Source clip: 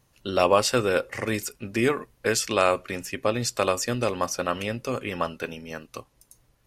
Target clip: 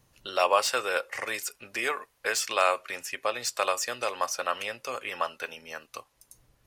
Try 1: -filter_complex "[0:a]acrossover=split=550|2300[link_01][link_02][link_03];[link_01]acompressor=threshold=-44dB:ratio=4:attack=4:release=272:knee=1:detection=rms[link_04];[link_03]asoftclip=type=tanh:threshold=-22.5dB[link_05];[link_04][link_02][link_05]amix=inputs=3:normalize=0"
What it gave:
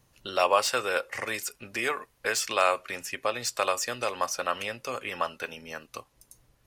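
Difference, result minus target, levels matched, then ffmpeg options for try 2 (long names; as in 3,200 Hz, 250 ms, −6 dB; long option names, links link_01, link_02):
downward compressor: peak gain reduction −8 dB
-filter_complex "[0:a]acrossover=split=550|2300[link_01][link_02][link_03];[link_01]acompressor=threshold=-55dB:ratio=4:attack=4:release=272:knee=1:detection=rms[link_04];[link_03]asoftclip=type=tanh:threshold=-22.5dB[link_05];[link_04][link_02][link_05]amix=inputs=3:normalize=0"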